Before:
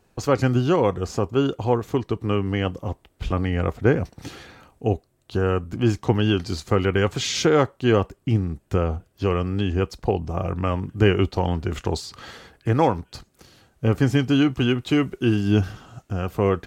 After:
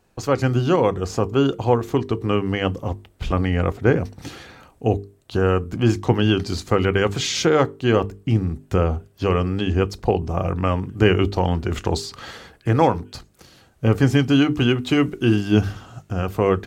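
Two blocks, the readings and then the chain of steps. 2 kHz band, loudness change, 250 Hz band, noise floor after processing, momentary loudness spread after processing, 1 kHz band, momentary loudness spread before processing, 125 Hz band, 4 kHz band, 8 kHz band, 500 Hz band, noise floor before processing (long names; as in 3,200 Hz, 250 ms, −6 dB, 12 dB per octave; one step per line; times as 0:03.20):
+2.5 dB, +2.0 dB, +2.0 dB, −56 dBFS, 12 LU, +2.5 dB, 11 LU, +2.0 dB, +2.5 dB, +2.0 dB, +2.0 dB, −64 dBFS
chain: mains-hum notches 50/100/150/200/250/300/350/400/450 Hz
automatic gain control gain up to 4 dB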